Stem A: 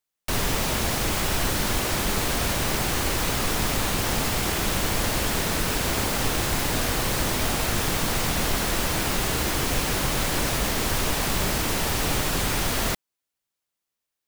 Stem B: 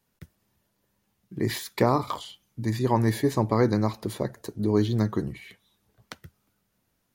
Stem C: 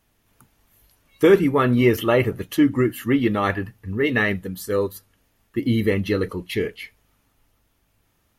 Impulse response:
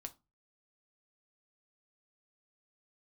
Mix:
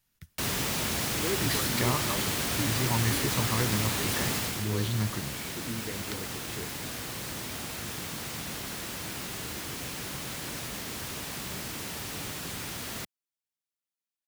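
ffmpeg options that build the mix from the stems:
-filter_complex "[0:a]highpass=96,adelay=100,volume=-3dB,afade=t=out:st=4.36:d=0.29:silence=0.446684[a];[1:a]equalizer=f=360:t=o:w=2.4:g=-12.5,volume=1.5dB[b];[2:a]volume=-16.5dB[c];[a][b][c]amix=inputs=3:normalize=0,equalizer=f=680:t=o:w=2.1:g=-5"

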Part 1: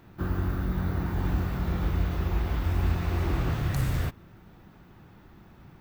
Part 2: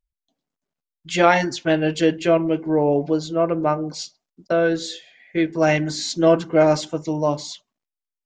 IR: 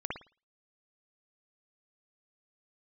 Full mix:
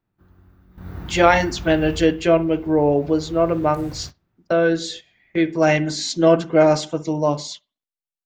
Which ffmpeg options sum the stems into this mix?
-filter_complex "[0:a]volume=1dB,afade=t=in:st=0.69:d=0.28:silence=0.298538,afade=t=out:st=1.94:d=0.22:silence=0.251189,afade=t=in:st=2.98:d=0.59:silence=0.473151,asplit=2[a][b];[b]volume=-15dB[c];[1:a]volume=0.5dB,asplit=2[d][e];[e]volume=-19dB[f];[2:a]atrim=start_sample=2205[g];[c][f]amix=inputs=2:normalize=0[h];[h][g]afir=irnorm=-1:irlink=0[i];[a][d][i]amix=inputs=3:normalize=0,agate=range=-10dB:threshold=-36dB:ratio=16:detection=peak"

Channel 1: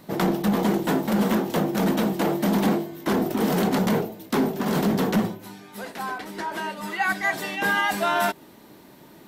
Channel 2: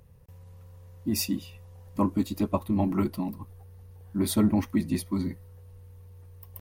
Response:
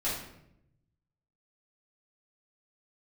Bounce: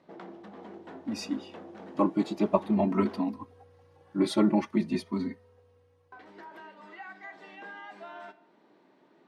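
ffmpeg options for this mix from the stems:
-filter_complex "[0:a]highshelf=f=4.9k:g=-9.5,acompressor=threshold=-34dB:ratio=2.5,volume=-12.5dB,asplit=3[a][b][c];[a]atrim=end=3.25,asetpts=PTS-STARTPTS,afade=t=out:st=3.246:d=0.004:c=hsin[d];[b]atrim=start=3.25:end=6.12,asetpts=PTS-STARTPTS,volume=0[e];[c]atrim=start=6.12,asetpts=PTS-STARTPTS,afade=t=in:d=0.004:c=hsin[f];[d][e][f]concat=n=3:v=0:a=1,asplit=2[g][h];[h]volume=-16.5dB[i];[1:a]dynaudnorm=f=350:g=9:m=12.5dB,asplit=2[j][k];[k]adelay=3,afreqshift=0.45[l];[j][l]amix=inputs=2:normalize=1,volume=-3dB[m];[2:a]atrim=start_sample=2205[n];[i][n]afir=irnorm=-1:irlink=0[o];[g][m][o]amix=inputs=3:normalize=0,highpass=270,lowpass=7.5k,aemphasis=mode=reproduction:type=50fm"

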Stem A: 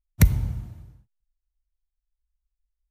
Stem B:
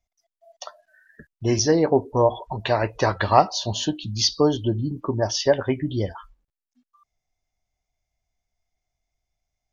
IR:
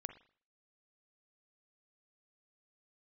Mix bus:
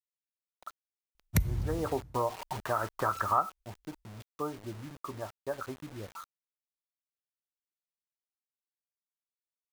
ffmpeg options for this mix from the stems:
-filter_complex "[0:a]adelay=1150,volume=-0.5dB[a];[1:a]lowpass=f=1.3k:t=q:w=13,aemphasis=mode=reproduction:type=50fm,acrusher=bits=4:mix=0:aa=0.000001,volume=-11dB,afade=t=in:st=1.41:d=0.71:silence=0.334965,afade=t=out:st=3.44:d=0.22:silence=0.398107[b];[a][b]amix=inputs=2:normalize=0,acompressor=threshold=-28dB:ratio=2.5"

